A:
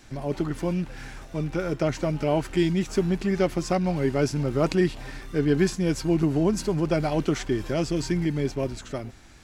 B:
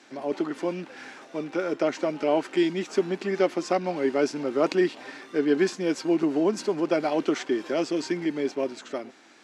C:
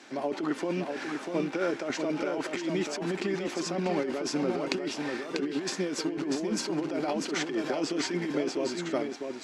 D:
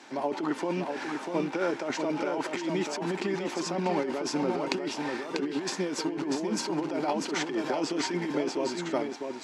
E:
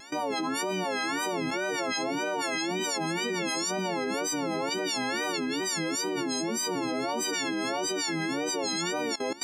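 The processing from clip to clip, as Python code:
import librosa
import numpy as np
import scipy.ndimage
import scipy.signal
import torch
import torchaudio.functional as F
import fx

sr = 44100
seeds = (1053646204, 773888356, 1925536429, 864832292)

y1 = scipy.signal.sosfilt(scipy.signal.butter(4, 260.0, 'highpass', fs=sr, output='sos'), x)
y1 = fx.air_absorb(y1, sr, metres=65.0)
y1 = y1 * librosa.db_to_amplitude(1.5)
y2 = fx.over_compress(y1, sr, threshold_db=-29.0, ratio=-1.0)
y2 = y2 + 10.0 ** (-5.0 / 20.0) * np.pad(y2, (int(643 * sr / 1000.0), 0))[:len(y2)]
y2 = y2 * librosa.db_to_amplitude(-1.5)
y3 = scipy.signal.sosfilt(scipy.signal.butter(2, 55.0, 'highpass', fs=sr, output='sos'), y2)
y3 = fx.peak_eq(y3, sr, hz=910.0, db=8.5, octaves=0.32)
y4 = fx.freq_snap(y3, sr, grid_st=4)
y4 = fx.wow_flutter(y4, sr, seeds[0], rate_hz=2.1, depth_cents=140.0)
y4 = fx.level_steps(y4, sr, step_db=18)
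y4 = y4 * librosa.db_to_amplitude(6.0)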